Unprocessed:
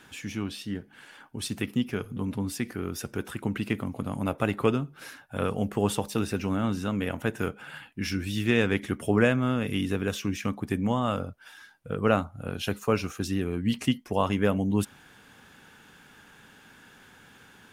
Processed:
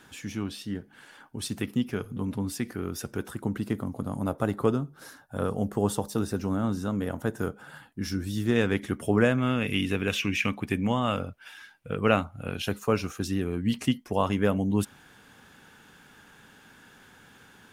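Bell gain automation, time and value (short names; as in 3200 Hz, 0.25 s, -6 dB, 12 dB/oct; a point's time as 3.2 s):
bell 2500 Hz 0.8 oct
-4 dB
from 3.29 s -13.5 dB
from 8.56 s -3.5 dB
from 9.38 s +7 dB
from 10.1 s +13.5 dB
from 10.66 s +6.5 dB
from 12.62 s -2 dB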